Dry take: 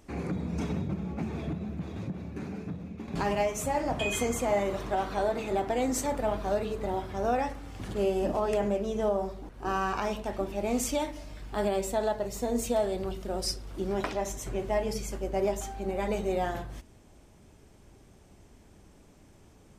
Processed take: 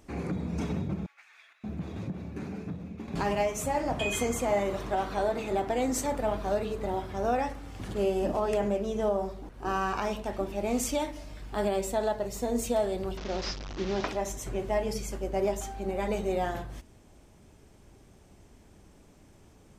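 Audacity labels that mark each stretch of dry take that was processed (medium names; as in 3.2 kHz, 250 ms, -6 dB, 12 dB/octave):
1.060000	1.640000	ladder high-pass 1.4 kHz, resonance 40%
13.170000	14.080000	one-bit delta coder 32 kbps, step -32.5 dBFS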